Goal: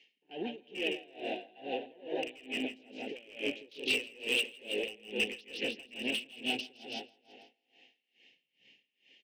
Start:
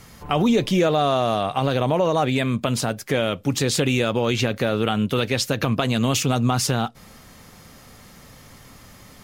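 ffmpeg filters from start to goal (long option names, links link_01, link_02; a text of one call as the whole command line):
ffmpeg -i in.wav -filter_complex "[0:a]asoftclip=type=tanh:threshold=-19.5dB,afwtdn=0.0282,asuperstop=centerf=1200:order=4:qfactor=0.62,highpass=frequency=320:width=0.5412,highpass=frequency=320:width=1.3066,equalizer=frequency=610:width_type=q:width=4:gain=-9,equalizer=frequency=880:width_type=q:width=4:gain=4,equalizer=frequency=1800:width_type=q:width=4:gain=8,equalizer=frequency=2900:width_type=q:width=4:gain=10,equalizer=frequency=4700:width_type=q:width=4:gain=-4,lowpass=frequency=4900:width=0.5412,lowpass=frequency=4900:width=1.3066,asplit=2[link_01][link_02];[link_02]adelay=145,lowpass=frequency=2500:poles=1,volume=-6dB,asplit=2[link_03][link_04];[link_04]adelay=145,lowpass=frequency=2500:poles=1,volume=0.53,asplit=2[link_05][link_06];[link_06]adelay=145,lowpass=frequency=2500:poles=1,volume=0.53,asplit=2[link_07][link_08];[link_08]adelay=145,lowpass=frequency=2500:poles=1,volume=0.53,asplit=2[link_09][link_10];[link_10]adelay=145,lowpass=frequency=2500:poles=1,volume=0.53,asplit=2[link_11][link_12];[link_12]adelay=145,lowpass=frequency=2500:poles=1,volume=0.53,asplit=2[link_13][link_14];[link_14]adelay=145,lowpass=frequency=2500:poles=1,volume=0.53[link_15];[link_03][link_05][link_07][link_09][link_11][link_13][link_15]amix=inputs=7:normalize=0[link_16];[link_01][link_16]amix=inputs=2:normalize=0,acompressor=threshold=-29dB:ratio=4,equalizer=frequency=2600:width=2.2:gain=13,volume=21.5dB,asoftclip=hard,volume=-21.5dB,asplit=2[link_17][link_18];[link_18]aecho=0:1:164|328|492|656|820|984:0.631|0.297|0.139|0.0655|0.0308|0.0145[link_19];[link_17][link_19]amix=inputs=2:normalize=0,aeval=exprs='val(0)*pow(10,-25*(0.5-0.5*cos(2*PI*2.3*n/s))/20)':channel_layout=same,volume=-2.5dB" out.wav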